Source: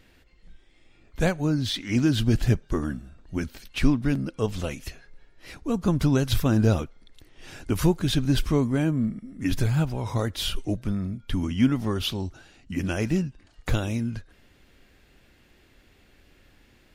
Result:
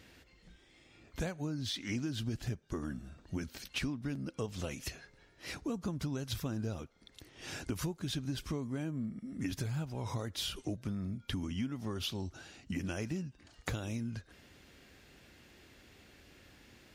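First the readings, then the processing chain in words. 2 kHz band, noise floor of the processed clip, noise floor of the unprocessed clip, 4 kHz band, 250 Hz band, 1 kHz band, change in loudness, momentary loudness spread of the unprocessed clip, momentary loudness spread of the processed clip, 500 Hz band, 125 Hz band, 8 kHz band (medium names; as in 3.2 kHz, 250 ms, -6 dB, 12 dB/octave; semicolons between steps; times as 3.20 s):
-10.0 dB, -65 dBFS, -59 dBFS, -9.0 dB, -13.5 dB, -12.0 dB, -13.0 dB, 12 LU, 21 LU, -13.5 dB, -13.5 dB, -7.0 dB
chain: high-pass 64 Hz; peaking EQ 5.9 kHz +4 dB 0.89 oct; compression 6:1, threshold -35 dBFS, peak gain reduction 18.5 dB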